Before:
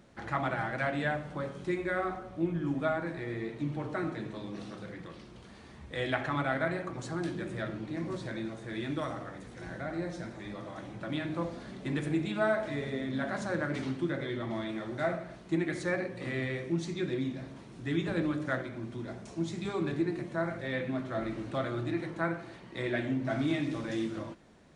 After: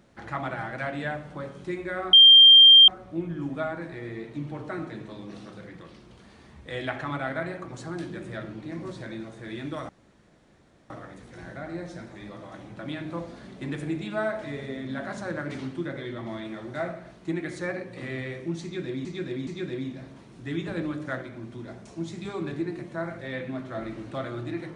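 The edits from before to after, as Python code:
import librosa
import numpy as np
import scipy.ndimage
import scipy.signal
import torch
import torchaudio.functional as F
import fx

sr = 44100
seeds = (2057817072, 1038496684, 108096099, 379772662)

y = fx.edit(x, sr, fx.insert_tone(at_s=2.13, length_s=0.75, hz=3180.0, db=-8.5),
    fx.insert_room_tone(at_s=9.14, length_s=1.01),
    fx.repeat(start_s=16.87, length_s=0.42, count=3), tone=tone)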